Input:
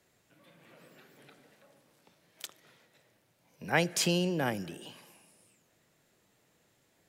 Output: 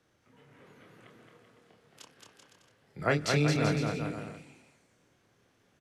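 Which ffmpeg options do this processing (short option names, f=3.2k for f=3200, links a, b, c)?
-filter_complex "[0:a]asetrate=30296,aresample=44100,atempo=1.45565,aemphasis=mode=reproduction:type=50kf,asplit=2[a][b];[b]adelay=33,volume=-5.5dB[c];[a][c]amix=inputs=2:normalize=0,asetrate=53802,aresample=44100,asplit=2[d][e];[e]aecho=0:1:220|385|508.8|601.6|671.2:0.631|0.398|0.251|0.158|0.1[f];[d][f]amix=inputs=2:normalize=0"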